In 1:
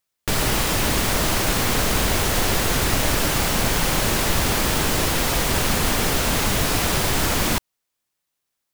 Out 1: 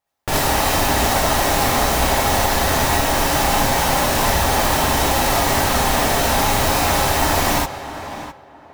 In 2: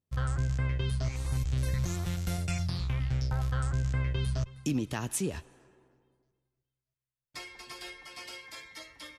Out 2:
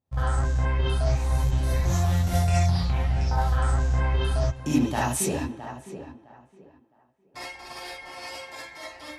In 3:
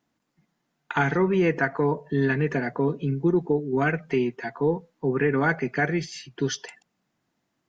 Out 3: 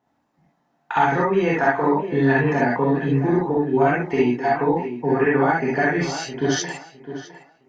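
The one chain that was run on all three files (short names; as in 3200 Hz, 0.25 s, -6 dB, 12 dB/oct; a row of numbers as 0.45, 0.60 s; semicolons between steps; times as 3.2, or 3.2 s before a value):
bell 770 Hz +11 dB 0.84 oct; compressor, threshold -20 dBFS; on a send: tape echo 0.661 s, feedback 25%, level -10 dB, low-pass 3000 Hz; on the sum: non-linear reverb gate 90 ms rising, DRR -5.5 dB; mismatched tape noise reduction decoder only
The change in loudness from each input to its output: +3.0, +7.5, +5.0 LU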